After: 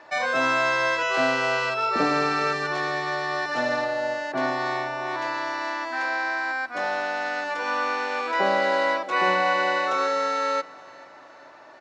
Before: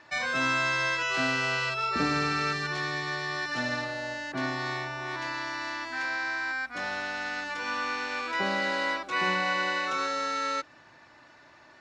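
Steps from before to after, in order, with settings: HPF 190 Hz 6 dB/oct; bell 630 Hz +11.5 dB 1.9 oct; on a send: feedback echo 0.437 s, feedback 51%, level -21.5 dB

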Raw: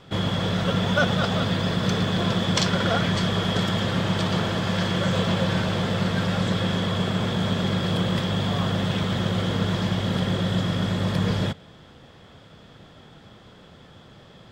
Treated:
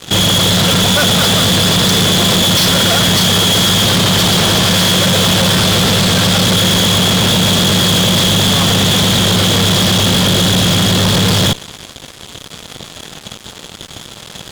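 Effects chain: band shelf 4500 Hz +10 dB 1.3 oct; fuzz box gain 35 dB, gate -43 dBFS; gain +3 dB

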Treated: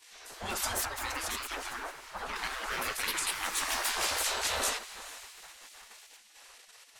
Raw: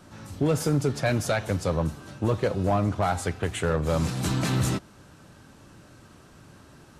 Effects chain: in parallel at +2.5 dB: level quantiser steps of 17 dB; on the sum: bell 61 Hz -4 dB 0.23 oct; on a send: diffused feedback echo 0.455 s, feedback 44%, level -15.5 dB; on the sum: echoes that change speed 0.285 s, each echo +3 st, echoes 2; spectral gate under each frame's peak -20 dB weak; 0.85–2.36 high shelf 2600 Hz -9 dB

